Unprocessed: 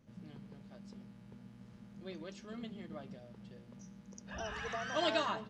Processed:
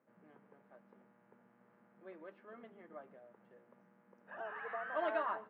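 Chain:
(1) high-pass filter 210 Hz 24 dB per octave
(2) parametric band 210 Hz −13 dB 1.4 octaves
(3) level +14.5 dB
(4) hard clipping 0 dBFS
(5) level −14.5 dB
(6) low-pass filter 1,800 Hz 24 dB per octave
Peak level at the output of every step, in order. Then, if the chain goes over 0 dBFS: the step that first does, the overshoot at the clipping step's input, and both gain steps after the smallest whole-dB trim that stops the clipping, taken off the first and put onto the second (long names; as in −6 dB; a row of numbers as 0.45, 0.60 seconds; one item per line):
−19.5, −20.5, −6.0, −6.0, −20.5, −22.5 dBFS
no step passes full scale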